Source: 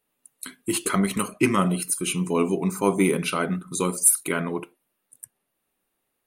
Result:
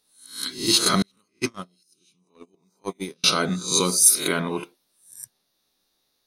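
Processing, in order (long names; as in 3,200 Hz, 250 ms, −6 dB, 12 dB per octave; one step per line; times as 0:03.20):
peak hold with a rise ahead of every peak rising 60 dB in 0.44 s
0:01.02–0:03.24: noise gate −15 dBFS, range −42 dB
flat-topped bell 4,700 Hz +16 dB 1 octave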